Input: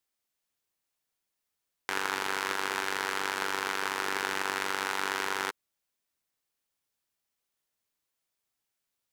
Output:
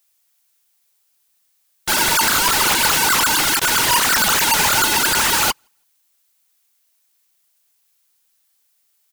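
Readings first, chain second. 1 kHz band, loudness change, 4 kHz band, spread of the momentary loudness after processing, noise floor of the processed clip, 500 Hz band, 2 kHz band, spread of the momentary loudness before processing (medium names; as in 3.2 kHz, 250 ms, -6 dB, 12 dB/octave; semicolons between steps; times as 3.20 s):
+13.5 dB, +17.0 dB, +18.5 dB, 3 LU, -65 dBFS, +9.5 dB, +13.0 dB, 3 LU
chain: formants replaced by sine waves; low-pass 2.4 kHz 6 dB/octave; in parallel at -1 dB: peak limiter -32 dBFS, peak gain reduction 10.5 dB; on the sum: waveshaping leveller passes 3; sine folder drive 17 dB, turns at -19 dBFS; added noise blue -45 dBFS; on a send: feedback delay 161 ms, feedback 27%, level -20 dB; on the sum: upward expansion 2.5:1, over -39 dBFS; trim +7.5 dB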